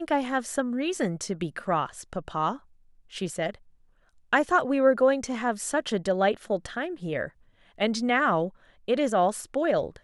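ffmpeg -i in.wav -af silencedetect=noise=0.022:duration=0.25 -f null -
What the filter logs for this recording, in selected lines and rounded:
silence_start: 2.56
silence_end: 3.15 | silence_duration: 0.59
silence_start: 3.54
silence_end: 4.33 | silence_duration: 0.78
silence_start: 7.27
silence_end: 7.80 | silence_duration: 0.53
silence_start: 8.48
silence_end: 8.88 | silence_duration: 0.40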